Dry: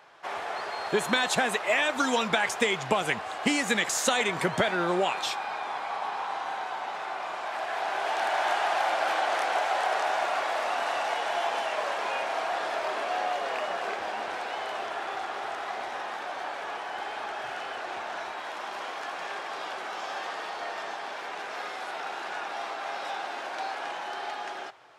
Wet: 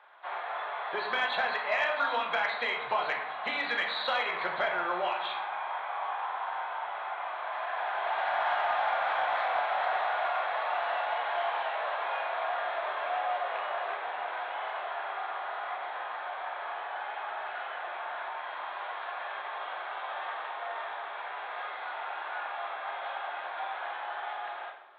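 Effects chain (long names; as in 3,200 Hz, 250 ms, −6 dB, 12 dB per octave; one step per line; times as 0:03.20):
hearing-aid frequency compression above 3,200 Hz 4 to 1
three-way crossover with the lows and the highs turned down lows −24 dB, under 580 Hz, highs −13 dB, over 2,300 Hz
rectangular room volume 210 cubic metres, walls mixed, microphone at 0.92 metres
soft clipping −14 dBFS, distortion −29 dB
level −2 dB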